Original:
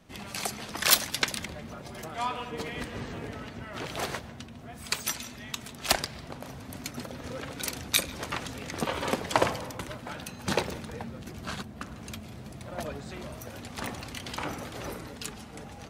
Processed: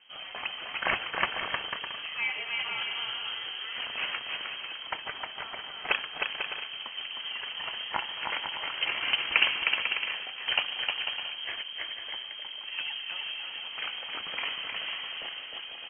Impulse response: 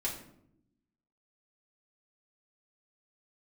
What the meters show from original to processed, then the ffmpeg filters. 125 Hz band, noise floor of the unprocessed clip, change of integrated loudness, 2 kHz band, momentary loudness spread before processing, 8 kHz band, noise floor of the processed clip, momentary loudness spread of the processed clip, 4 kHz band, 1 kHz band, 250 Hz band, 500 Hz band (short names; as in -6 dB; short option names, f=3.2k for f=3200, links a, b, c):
under -15 dB, -45 dBFS, +1.0 dB, +5.5 dB, 15 LU, under -40 dB, -42 dBFS, 9 LU, +5.0 dB, -2.5 dB, -15.5 dB, -9.5 dB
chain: -filter_complex "[0:a]lowpass=f=2.8k:t=q:w=0.5098,lowpass=f=2.8k:t=q:w=0.6013,lowpass=f=2.8k:t=q:w=0.9,lowpass=f=2.8k:t=q:w=2.563,afreqshift=-3300,lowshelf=f=70:g=-8,asplit=2[a][b];[b]aecho=0:1:310|496|607.6|674.6|714.7:0.631|0.398|0.251|0.158|0.1[c];[a][c]amix=inputs=2:normalize=0"